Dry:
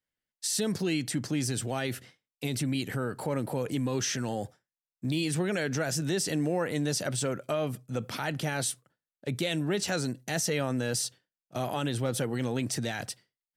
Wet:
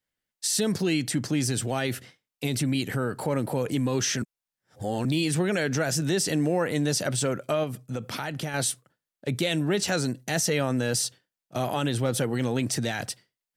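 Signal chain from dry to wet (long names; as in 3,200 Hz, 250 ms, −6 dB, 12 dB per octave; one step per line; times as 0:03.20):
0:04.22–0:05.05: reverse
0:07.63–0:08.54: downward compressor, threshold −32 dBFS, peak gain reduction 6.5 dB
level +4 dB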